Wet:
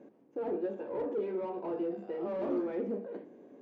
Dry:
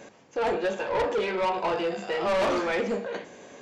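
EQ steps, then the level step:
resonant band-pass 300 Hz, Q 2.4
0.0 dB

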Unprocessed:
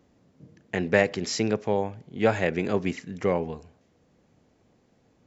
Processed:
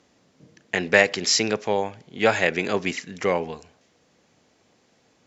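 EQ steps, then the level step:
low-pass filter 6,900 Hz 12 dB per octave
spectral tilt +3 dB per octave
+5.0 dB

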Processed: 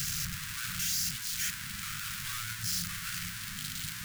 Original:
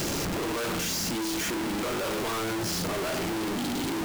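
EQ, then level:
elliptic band-stop filter 150–1,500 Hz, stop band 60 dB
low-shelf EQ 260 Hz −6.5 dB
parametric band 2,200 Hz −5.5 dB 2.8 octaves
+2.0 dB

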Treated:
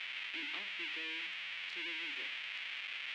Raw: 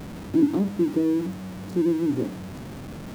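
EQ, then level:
flat-topped band-pass 2,600 Hz, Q 2
+13.0 dB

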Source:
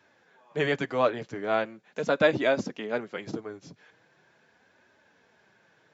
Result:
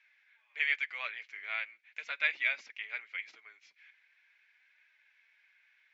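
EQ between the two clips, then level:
high-pass with resonance 2,200 Hz, resonance Q 6.2
high-frequency loss of the air 120 metres
−6.5 dB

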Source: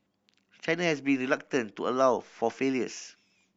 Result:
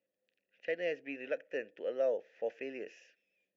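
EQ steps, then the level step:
formant filter e
low-shelf EQ 81 Hz +11.5 dB
0.0 dB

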